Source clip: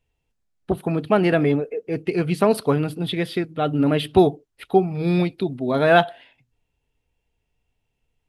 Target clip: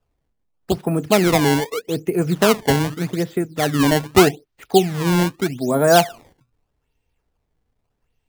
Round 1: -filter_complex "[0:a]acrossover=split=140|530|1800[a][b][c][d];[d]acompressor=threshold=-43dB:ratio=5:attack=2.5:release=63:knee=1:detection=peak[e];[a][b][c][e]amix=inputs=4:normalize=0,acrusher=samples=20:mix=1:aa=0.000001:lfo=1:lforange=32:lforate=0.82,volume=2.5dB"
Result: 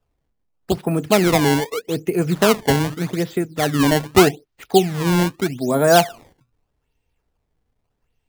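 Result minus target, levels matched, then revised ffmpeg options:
compressor: peak gain reduction -6.5 dB
-filter_complex "[0:a]acrossover=split=140|530|1800[a][b][c][d];[d]acompressor=threshold=-51dB:ratio=5:attack=2.5:release=63:knee=1:detection=peak[e];[a][b][c][e]amix=inputs=4:normalize=0,acrusher=samples=20:mix=1:aa=0.000001:lfo=1:lforange=32:lforate=0.82,volume=2.5dB"

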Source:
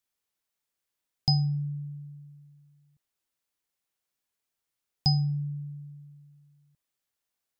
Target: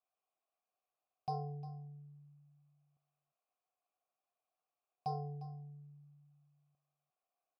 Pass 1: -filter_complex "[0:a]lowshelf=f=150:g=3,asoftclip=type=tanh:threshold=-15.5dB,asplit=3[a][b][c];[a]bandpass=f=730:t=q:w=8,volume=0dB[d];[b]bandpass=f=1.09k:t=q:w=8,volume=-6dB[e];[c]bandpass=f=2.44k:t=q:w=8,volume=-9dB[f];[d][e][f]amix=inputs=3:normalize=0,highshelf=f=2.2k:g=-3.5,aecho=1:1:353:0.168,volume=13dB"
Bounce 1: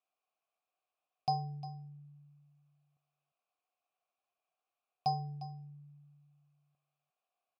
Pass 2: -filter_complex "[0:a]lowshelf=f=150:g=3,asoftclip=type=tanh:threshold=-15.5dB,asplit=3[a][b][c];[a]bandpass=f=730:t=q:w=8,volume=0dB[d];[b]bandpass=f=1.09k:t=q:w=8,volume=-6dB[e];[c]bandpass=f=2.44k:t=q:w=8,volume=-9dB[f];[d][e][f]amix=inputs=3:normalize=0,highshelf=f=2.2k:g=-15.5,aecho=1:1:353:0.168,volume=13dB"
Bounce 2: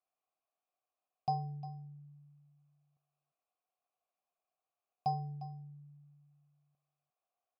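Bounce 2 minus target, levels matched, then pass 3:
soft clip: distortion -9 dB
-filter_complex "[0:a]lowshelf=f=150:g=3,asoftclip=type=tanh:threshold=-24dB,asplit=3[a][b][c];[a]bandpass=f=730:t=q:w=8,volume=0dB[d];[b]bandpass=f=1.09k:t=q:w=8,volume=-6dB[e];[c]bandpass=f=2.44k:t=q:w=8,volume=-9dB[f];[d][e][f]amix=inputs=3:normalize=0,highshelf=f=2.2k:g=-15.5,aecho=1:1:353:0.168,volume=13dB"

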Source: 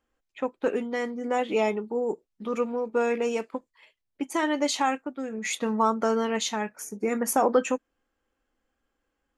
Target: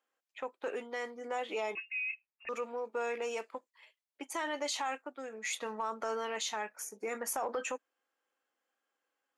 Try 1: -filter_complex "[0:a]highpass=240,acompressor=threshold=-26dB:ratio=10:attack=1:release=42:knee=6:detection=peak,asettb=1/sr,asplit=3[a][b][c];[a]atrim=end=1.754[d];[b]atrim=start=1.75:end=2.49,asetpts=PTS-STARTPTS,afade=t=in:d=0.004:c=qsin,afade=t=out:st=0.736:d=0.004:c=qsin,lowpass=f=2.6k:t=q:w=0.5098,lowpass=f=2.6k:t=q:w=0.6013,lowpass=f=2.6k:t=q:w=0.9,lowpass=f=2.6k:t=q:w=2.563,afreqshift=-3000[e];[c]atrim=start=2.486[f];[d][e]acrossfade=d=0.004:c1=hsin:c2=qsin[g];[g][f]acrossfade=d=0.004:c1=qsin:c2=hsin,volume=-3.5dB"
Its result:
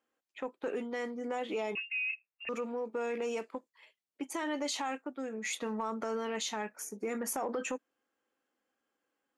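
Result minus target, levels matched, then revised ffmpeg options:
250 Hz band +8.0 dB
-filter_complex "[0:a]highpass=540,acompressor=threshold=-26dB:ratio=10:attack=1:release=42:knee=6:detection=peak,asettb=1/sr,asplit=3[a][b][c];[a]atrim=end=1.754[d];[b]atrim=start=1.75:end=2.49,asetpts=PTS-STARTPTS,afade=t=in:d=0.004:c=qsin,afade=t=out:st=0.736:d=0.004:c=qsin,lowpass=f=2.6k:t=q:w=0.5098,lowpass=f=2.6k:t=q:w=0.6013,lowpass=f=2.6k:t=q:w=0.9,lowpass=f=2.6k:t=q:w=2.563,afreqshift=-3000[e];[c]atrim=start=2.486[f];[d][e]acrossfade=d=0.004:c1=hsin:c2=qsin[g];[g][f]acrossfade=d=0.004:c1=qsin:c2=hsin,volume=-3.5dB"

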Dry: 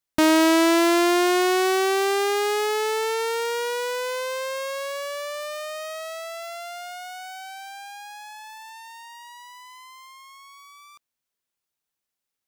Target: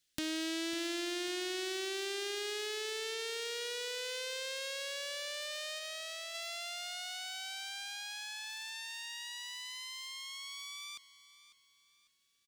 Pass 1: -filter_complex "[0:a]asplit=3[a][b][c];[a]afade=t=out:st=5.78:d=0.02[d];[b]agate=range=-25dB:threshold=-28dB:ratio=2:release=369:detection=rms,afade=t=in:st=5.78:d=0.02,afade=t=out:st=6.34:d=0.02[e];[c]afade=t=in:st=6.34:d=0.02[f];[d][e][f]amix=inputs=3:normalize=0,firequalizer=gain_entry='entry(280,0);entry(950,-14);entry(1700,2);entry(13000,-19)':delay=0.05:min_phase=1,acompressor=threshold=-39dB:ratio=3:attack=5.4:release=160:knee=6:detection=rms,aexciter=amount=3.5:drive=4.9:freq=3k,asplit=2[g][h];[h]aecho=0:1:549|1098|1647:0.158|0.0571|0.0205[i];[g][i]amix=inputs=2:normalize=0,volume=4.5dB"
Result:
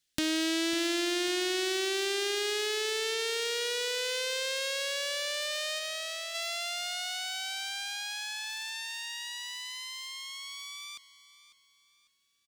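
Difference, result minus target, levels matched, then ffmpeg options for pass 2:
compressor: peak gain reduction -7.5 dB
-filter_complex "[0:a]asplit=3[a][b][c];[a]afade=t=out:st=5.78:d=0.02[d];[b]agate=range=-25dB:threshold=-28dB:ratio=2:release=369:detection=rms,afade=t=in:st=5.78:d=0.02,afade=t=out:st=6.34:d=0.02[e];[c]afade=t=in:st=6.34:d=0.02[f];[d][e][f]amix=inputs=3:normalize=0,firequalizer=gain_entry='entry(280,0);entry(950,-14);entry(1700,2);entry(13000,-19)':delay=0.05:min_phase=1,acompressor=threshold=-50dB:ratio=3:attack=5.4:release=160:knee=6:detection=rms,aexciter=amount=3.5:drive=4.9:freq=3k,asplit=2[g][h];[h]aecho=0:1:549|1098|1647:0.158|0.0571|0.0205[i];[g][i]amix=inputs=2:normalize=0,volume=4.5dB"

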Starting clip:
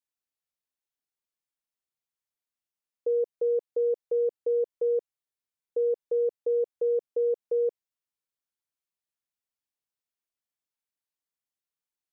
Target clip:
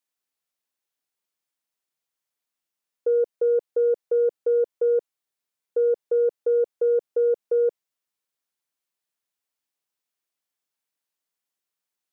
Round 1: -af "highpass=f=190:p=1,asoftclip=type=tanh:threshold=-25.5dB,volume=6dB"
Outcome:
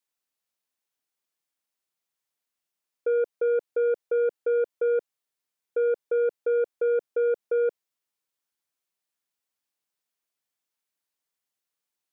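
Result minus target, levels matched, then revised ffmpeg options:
soft clip: distortion +17 dB
-af "highpass=f=190:p=1,asoftclip=type=tanh:threshold=-15.5dB,volume=6dB"

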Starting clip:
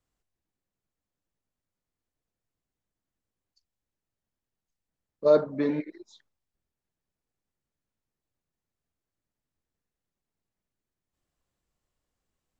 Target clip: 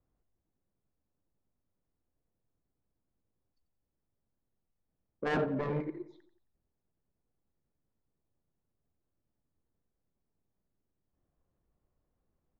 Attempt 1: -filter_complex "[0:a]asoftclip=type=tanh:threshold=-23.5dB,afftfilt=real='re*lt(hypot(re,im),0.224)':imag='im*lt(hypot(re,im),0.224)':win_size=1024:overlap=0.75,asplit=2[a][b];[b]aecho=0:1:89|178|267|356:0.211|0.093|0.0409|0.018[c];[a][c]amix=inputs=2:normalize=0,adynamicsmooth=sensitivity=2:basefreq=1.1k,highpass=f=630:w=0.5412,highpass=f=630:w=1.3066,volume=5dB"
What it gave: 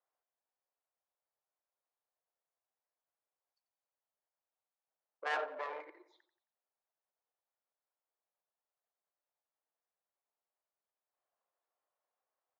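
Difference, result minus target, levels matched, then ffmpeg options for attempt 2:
500 Hz band -3.0 dB
-filter_complex "[0:a]asoftclip=type=tanh:threshold=-23.5dB,afftfilt=real='re*lt(hypot(re,im),0.224)':imag='im*lt(hypot(re,im),0.224)':win_size=1024:overlap=0.75,asplit=2[a][b];[b]aecho=0:1:89|178|267|356:0.211|0.093|0.0409|0.018[c];[a][c]amix=inputs=2:normalize=0,adynamicsmooth=sensitivity=2:basefreq=1.1k,volume=5dB"

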